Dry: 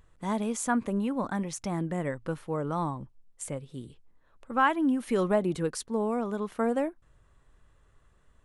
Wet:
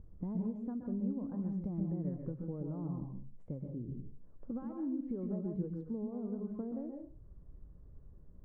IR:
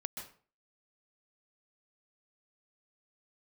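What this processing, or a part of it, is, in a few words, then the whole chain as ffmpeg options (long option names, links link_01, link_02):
television next door: -filter_complex "[0:a]acompressor=threshold=-43dB:ratio=5,lowpass=320[link_01];[1:a]atrim=start_sample=2205[link_02];[link_01][link_02]afir=irnorm=-1:irlink=0,volume=9.5dB"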